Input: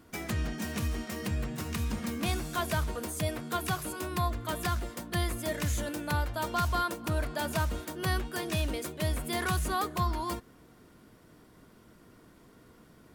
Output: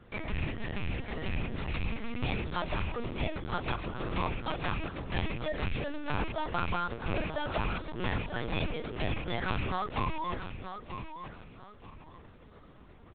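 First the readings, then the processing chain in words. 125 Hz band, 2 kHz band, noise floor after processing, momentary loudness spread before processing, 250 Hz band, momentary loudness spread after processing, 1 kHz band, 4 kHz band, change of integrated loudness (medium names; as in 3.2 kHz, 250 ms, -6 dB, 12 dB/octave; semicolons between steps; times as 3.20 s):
-2.5 dB, -0.5 dB, -54 dBFS, 4 LU, -2.0 dB, 10 LU, -1.5 dB, -2.5 dB, -2.5 dB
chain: rattle on loud lows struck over -33 dBFS, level -26 dBFS; band-stop 1.6 kHz, Q 12; compression 2.5:1, threshold -32 dBFS, peak gain reduction 6 dB; feedback delay 934 ms, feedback 30%, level -9 dB; LPC vocoder at 8 kHz pitch kept; trim +2 dB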